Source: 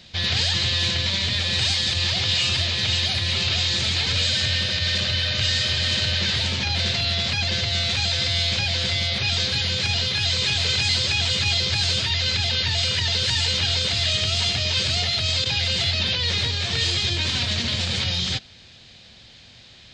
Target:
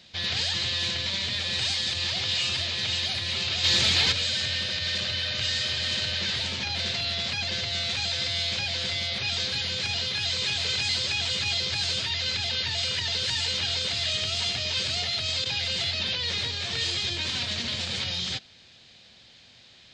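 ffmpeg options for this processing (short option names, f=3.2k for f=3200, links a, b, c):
-filter_complex "[0:a]lowshelf=f=120:g=-10,asplit=3[a][b][c];[a]afade=t=out:st=3.63:d=0.02[d];[b]acontrast=74,afade=t=in:st=3.63:d=0.02,afade=t=out:st=4.11:d=0.02[e];[c]afade=t=in:st=4.11:d=0.02[f];[d][e][f]amix=inputs=3:normalize=0,volume=-5dB"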